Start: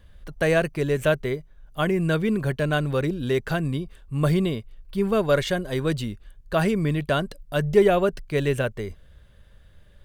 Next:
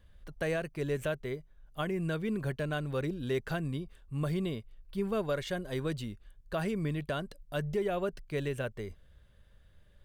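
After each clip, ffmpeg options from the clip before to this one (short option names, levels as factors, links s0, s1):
-af "alimiter=limit=0.2:level=0:latency=1:release=317,volume=0.376"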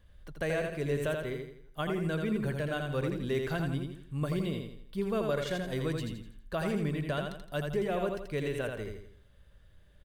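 -af "aecho=1:1:83|166|249|332|415:0.596|0.238|0.0953|0.0381|0.0152"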